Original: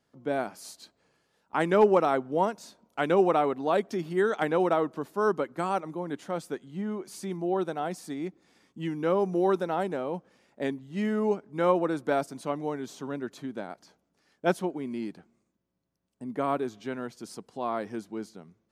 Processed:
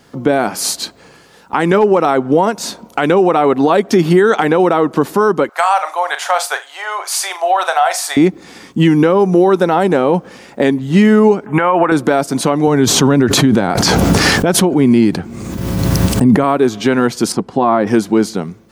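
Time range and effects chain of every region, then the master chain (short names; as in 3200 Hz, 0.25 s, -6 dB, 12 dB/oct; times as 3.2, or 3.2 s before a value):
5.49–8.17 elliptic high-pass 650 Hz, stop band 70 dB + compressor 3:1, threshold -36 dBFS + flutter echo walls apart 6.8 m, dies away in 0.22 s
11.46–11.92 band shelf 1600 Hz +11.5 dB 2.9 oct + compressor 4:1, threshold -32 dBFS + Butterworth band-stop 4500 Hz, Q 1.1
12.67–16.44 bell 90 Hz +11 dB 1.4 oct + backwards sustainer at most 28 dB/s
17.32–17.87 LPF 1300 Hz 6 dB/oct + notch 460 Hz, Q 6.9
whole clip: compressor 5:1, threshold -33 dBFS; notch 620 Hz, Q 12; maximiser +28 dB; gain -1 dB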